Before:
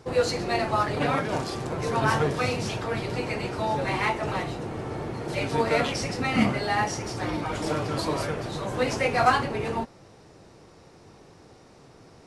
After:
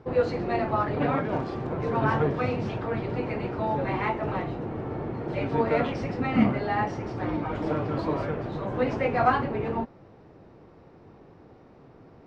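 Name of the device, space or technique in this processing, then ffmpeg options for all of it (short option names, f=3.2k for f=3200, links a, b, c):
phone in a pocket: -af "lowpass=3.2k,equalizer=f=260:t=o:w=0.78:g=2.5,highshelf=f=2.2k:g=-10"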